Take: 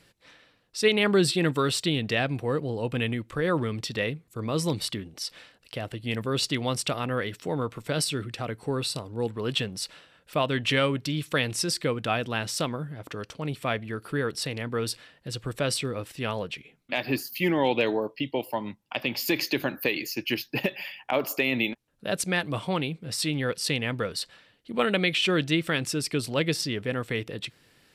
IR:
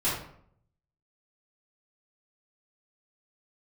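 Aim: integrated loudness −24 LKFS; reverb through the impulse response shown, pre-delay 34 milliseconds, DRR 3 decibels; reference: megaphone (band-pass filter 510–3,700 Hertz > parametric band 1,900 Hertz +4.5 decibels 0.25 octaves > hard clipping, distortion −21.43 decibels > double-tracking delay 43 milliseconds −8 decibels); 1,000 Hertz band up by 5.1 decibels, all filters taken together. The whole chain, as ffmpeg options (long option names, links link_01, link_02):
-filter_complex "[0:a]equalizer=frequency=1000:width_type=o:gain=7,asplit=2[link_01][link_02];[1:a]atrim=start_sample=2205,adelay=34[link_03];[link_02][link_03]afir=irnorm=-1:irlink=0,volume=-13dB[link_04];[link_01][link_04]amix=inputs=2:normalize=0,highpass=510,lowpass=3700,equalizer=frequency=1900:width_type=o:width=0.25:gain=4.5,asoftclip=type=hard:threshold=-14.5dB,asplit=2[link_05][link_06];[link_06]adelay=43,volume=-8dB[link_07];[link_05][link_07]amix=inputs=2:normalize=0,volume=3dB"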